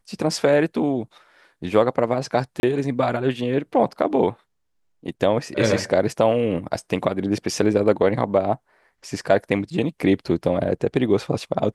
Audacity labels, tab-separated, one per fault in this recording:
2.600000	2.630000	gap 31 ms

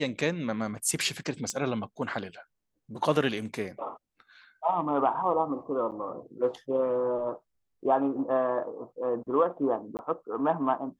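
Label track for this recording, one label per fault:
1.500000	1.500000	pop -18 dBFS
5.910000	5.920000	gap 8.4 ms
9.970000	9.990000	gap 19 ms

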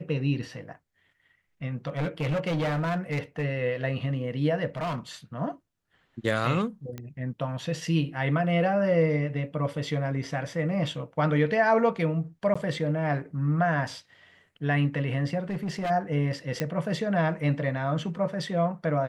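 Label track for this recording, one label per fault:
1.870000	3.450000	clipped -24 dBFS
4.670000	4.980000	clipped -27 dBFS
6.980000	6.980000	pop -23 dBFS
12.540000	12.550000	gap 15 ms
15.500000	15.910000	clipped -26.5 dBFS
16.600000	16.600000	pop -14 dBFS

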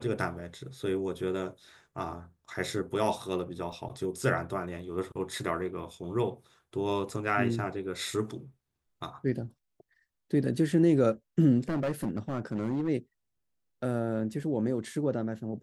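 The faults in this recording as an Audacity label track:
3.720000	3.720000	gap 3.7 ms
11.690000	12.890000	clipped -26 dBFS

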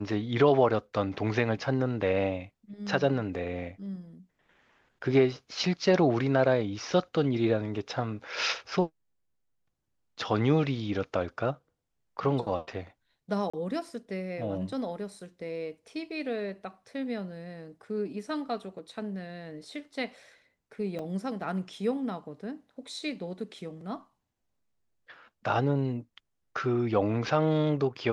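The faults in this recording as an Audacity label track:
13.500000	13.540000	gap 35 ms
20.990000	20.990000	gap 3.4 ms

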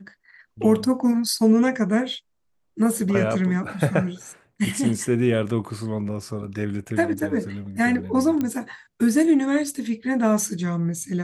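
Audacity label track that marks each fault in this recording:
8.410000	8.410000	pop -13 dBFS

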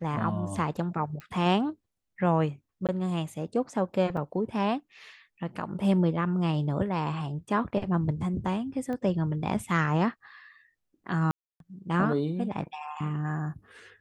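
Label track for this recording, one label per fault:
1.200000	1.200000	pop -28 dBFS
2.870000	2.890000	gap 17 ms
4.170000	4.170000	gap 3.1 ms
8.930000	8.930000	pop -25 dBFS
11.310000	11.600000	gap 0.292 s

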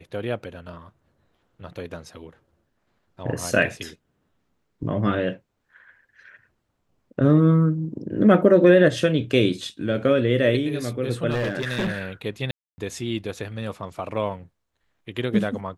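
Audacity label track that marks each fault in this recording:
11.300000	12.020000	clipped -20.5 dBFS
12.510000	12.780000	gap 0.27 s

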